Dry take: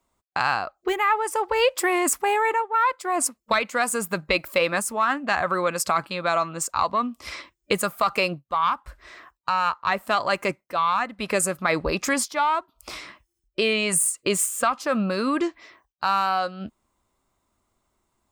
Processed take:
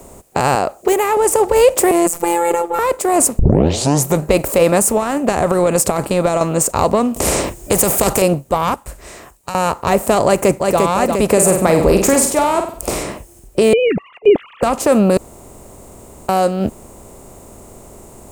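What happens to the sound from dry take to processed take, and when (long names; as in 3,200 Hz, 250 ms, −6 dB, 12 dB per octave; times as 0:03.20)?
0:00.55–0:01.17: high-pass filter 410 Hz 6 dB per octave
0:01.91–0:02.79: phases set to zero 171 Hz
0:03.39: tape start 0.84 s
0:04.87–0:06.41: downward compressor, threshold −23 dBFS
0:07.16–0:08.22: every bin compressed towards the loudest bin 2 to 1
0:08.74–0:09.55: guitar amp tone stack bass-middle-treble 5-5-5
0:10.25–0:10.80: delay throw 350 ms, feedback 50%, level −7.5 dB
0:11.32–0:13.03: flutter between parallel walls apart 8.2 metres, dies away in 0.3 s
0:13.73–0:14.63: three sine waves on the formant tracks
0:15.17–0:16.29: fill with room tone
whole clip: compressor on every frequency bin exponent 0.6; flat-topped bell 2,200 Hz −13 dB 2.6 octaves; boost into a limiter +11 dB; level −1 dB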